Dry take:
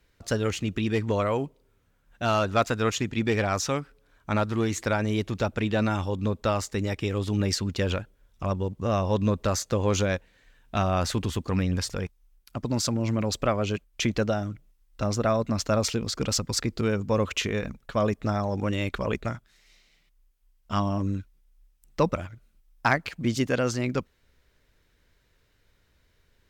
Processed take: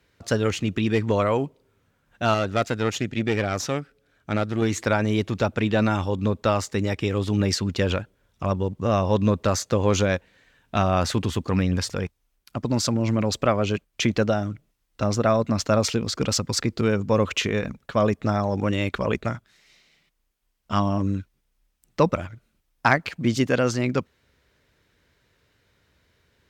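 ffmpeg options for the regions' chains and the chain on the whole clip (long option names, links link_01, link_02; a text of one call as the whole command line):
ffmpeg -i in.wav -filter_complex "[0:a]asettb=1/sr,asplit=3[link_01][link_02][link_03];[link_01]atrim=end=2.344[link_04];[link_02]atrim=start=2.34:end=4.62,asetpts=PTS-STARTPTS,afade=type=in:duration=0.004:curve=qsin,afade=type=out:start_time=2.276:duration=0.004:curve=qsin,equalizer=frequency=1000:width_type=o:width=0.35:gain=-11,aeval=exprs='(tanh(7.08*val(0)+0.6)-tanh(0.6))/7.08':channel_layout=same[link_05];[link_03]atrim=start=4.616[link_06];[link_04][link_05]acrossfade=duration=0.004:curve1=hsin:curve2=qsin[link_07];[link_07][link_06]acrossfade=duration=0.004:curve1=qsin:curve2=hsin,highpass=76,highshelf=frequency=7700:gain=-5.5,volume=4dB" out.wav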